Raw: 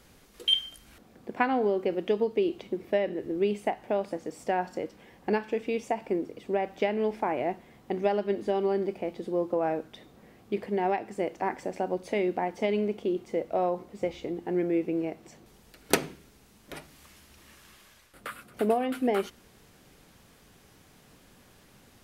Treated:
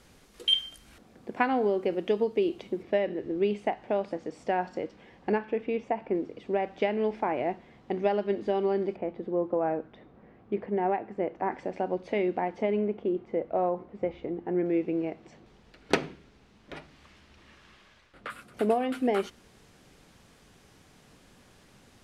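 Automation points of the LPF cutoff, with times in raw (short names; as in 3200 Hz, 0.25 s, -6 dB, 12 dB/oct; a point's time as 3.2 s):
11000 Hz
from 2.83 s 4900 Hz
from 5.32 s 2400 Hz
from 6.15 s 4700 Hz
from 8.96 s 1800 Hz
from 11.52 s 3500 Hz
from 12.62 s 1900 Hz
from 14.66 s 4000 Hz
from 18.3 s 9400 Hz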